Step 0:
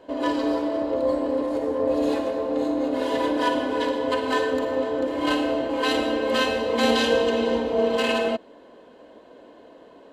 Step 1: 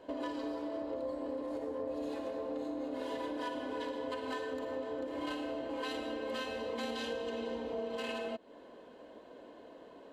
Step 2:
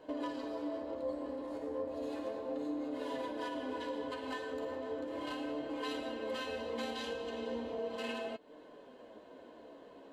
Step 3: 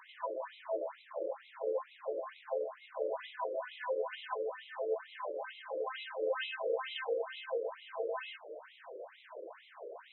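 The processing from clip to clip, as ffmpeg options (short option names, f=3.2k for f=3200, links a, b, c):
-af "acompressor=threshold=-31dB:ratio=6,volume=-5dB"
-af "flanger=delay=6.5:depth=8.1:regen=48:speed=0.35:shape=sinusoidal,volume=3dB"
-af "aeval=exprs='val(0)+0.5*0.00266*sgn(val(0))':c=same,afftfilt=real='re*between(b*sr/1024,430*pow(2900/430,0.5+0.5*sin(2*PI*2.2*pts/sr))/1.41,430*pow(2900/430,0.5+0.5*sin(2*PI*2.2*pts/sr))*1.41)':imag='im*between(b*sr/1024,430*pow(2900/430,0.5+0.5*sin(2*PI*2.2*pts/sr))/1.41,430*pow(2900/430,0.5+0.5*sin(2*PI*2.2*pts/sr))*1.41)':win_size=1024:overlap=0.75,volume=7dB"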